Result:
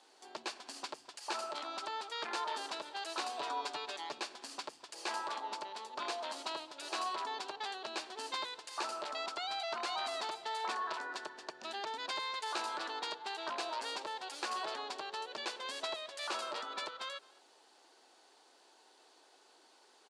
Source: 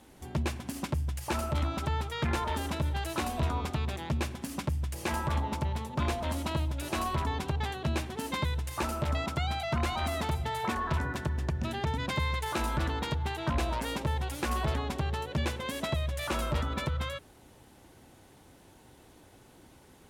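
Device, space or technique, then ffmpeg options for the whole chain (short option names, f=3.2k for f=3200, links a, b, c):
phone speaker on a table: -filter_complex "[0:a]asettb=1/sr,asplit=3[a][b][c];[a]atrim=end=3.394[d];[b]atrim=start=3.39:end=4.19,asetpts=PTS-STARTPTS,afade=t=in:d=0.004:c=qsin,afade=t=out:st=0.796:d=0.004:c=qsin,aecho=1:1:7:0.8,atrim=end_sample=35280[e];[c]atrim=start=4.186[f];[d][e]acrossfade=d=0.004:c1=hsin:c2=qsin[g];[g][f]acrossfade=d=0.004:c1=qsin:c2=hsin,highpass=f=430:w=0.5412,highpass=f=430:w=1.3066,equalizer=f=540:t=q:w=4:g=-6,equalizer=f=2.1k:t=q:w=4:g=-5,equalizer=f=4.5k:t=q:w=4:g=9,lowpass=f=8.6k:w=0.5412,lowpass=f=8.6k:w=1.3066,asplit=2[h][i];[i]adelay=215.7,volume=-23dB,highshelf=f=4k:g=-4.85[j];[h][j]amix=inputs=2:normalize=0,volume=-3.5dB"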